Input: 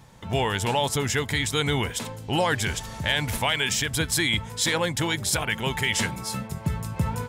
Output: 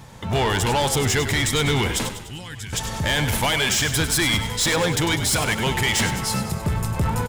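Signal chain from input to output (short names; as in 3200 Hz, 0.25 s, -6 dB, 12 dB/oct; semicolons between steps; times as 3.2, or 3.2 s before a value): 2.09–2.73 passive tone stack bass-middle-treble 6-0-2; soft clip -24.5 dBFS, distortion -9 dB; frequency-shifting echo 99 ms, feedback 55%, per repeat -40 Hz, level -10 dB; gain +8 dB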